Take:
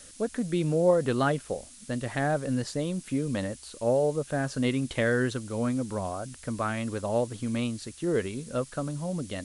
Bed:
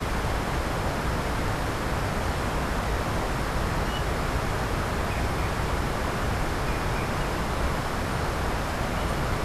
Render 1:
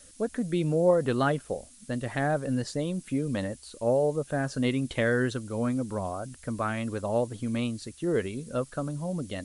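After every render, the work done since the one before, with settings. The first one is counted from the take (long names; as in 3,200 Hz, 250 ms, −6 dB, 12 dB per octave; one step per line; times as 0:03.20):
broadband denoise 6 dB, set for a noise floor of −49 dBFS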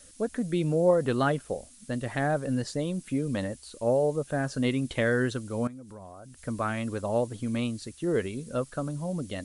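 0:05.67–0:06.43: downward compressor 3 to 1, threshold −46 dBFS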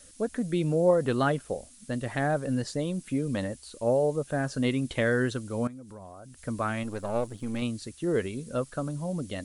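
0:06.83–0:07.62: gain on one half-wave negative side −7 dB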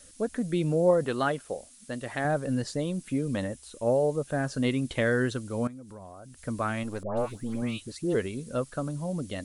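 0:01.04–0:02.25: low-shelf EQ 230 Hz −9.5 dB
0:03.36–0:03.86: notch filter 4,500 Hz, Q 7.6
0:07.03–0:08.15: all-pass dispersion highs, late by 143 ms, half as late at 1,500 Hz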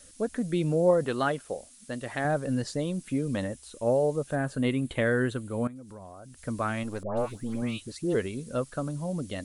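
0:04.35–0:05.76: parametric band 5,500 Hz −12.5 dB 0.62 octaves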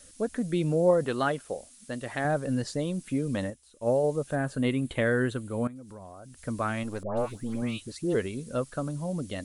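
0:03.50–0:04.04: expander for the loud parts, over −45 dBFS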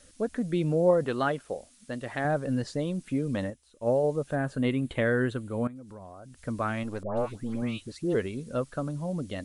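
high-shelf EQ 6,800 Hz −10 dB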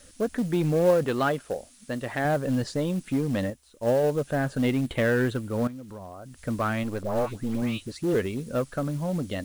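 in parallel at −4 dB: gain into a clipping stage and back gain 29 dB
on the sum: log-companded quantiser 6 bits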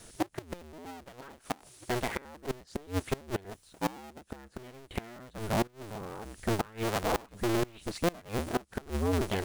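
sub-harmonics by changed cycles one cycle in 2, inverted
gate with flip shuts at −19 dBFS, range −25 dB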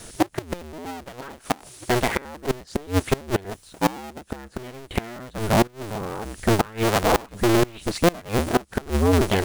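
level +10.5 dB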